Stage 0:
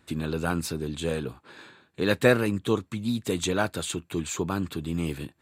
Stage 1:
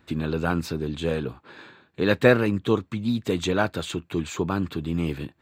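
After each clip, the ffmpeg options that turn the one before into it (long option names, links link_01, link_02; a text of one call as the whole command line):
ffmpeg -i in.wav -af "equalizer=frequency=10000:width=0.82:gain=-14.5,volume=3dB" out.wav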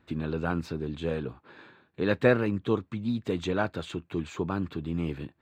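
ffmpeg -i in.wav -af "lowpass=frequency=2900:poles=1,volume=-4.5dB" out.wav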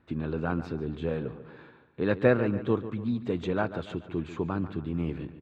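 ffmpeg -i in.wav -filter_complex "[0:a]aemphasis=mode=reproduction:type=75kf,asplit=2[link_01][link_02];[link_02]adelay=143,lowpass=frequency=3800:poles=1,volume=-13dB,asplit=2[link_03][link_04];[link_04]adelay=143,lowpass=frequency=3800:poles=1,volume=0.49,asplit=2[link_05][link_06];[link_06]adelay=143,lowpass=frequency=3800:poles=1,volume=0.49,asplit=2[link_07][link_08];[link_08]adelay=143,lowpass=frequency=3800:poles=1,volume=0.49,asplit=2[link_09][link_10];[link_10]adelay=143,lowpass=frequency=3800:poles=1,volume=0.49[link_11];[link_01][link_03][link_05][link_07][link_09][link_11]amix=inputs=6:normalize=0" out.wav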